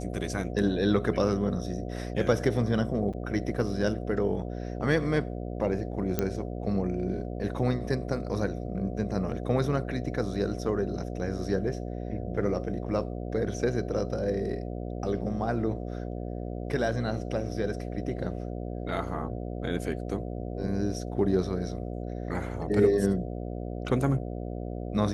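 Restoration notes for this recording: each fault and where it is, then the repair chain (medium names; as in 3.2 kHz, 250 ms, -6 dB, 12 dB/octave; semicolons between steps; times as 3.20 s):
buzz 60 Hz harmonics 12 -35 dBFS
3.13–3.14 s: dropout 5.9 ms
6.19 s: pop -12 dBFS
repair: de-click; de-hum 60 Hz, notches 12; interpolate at 3.13 s, 5.9 ms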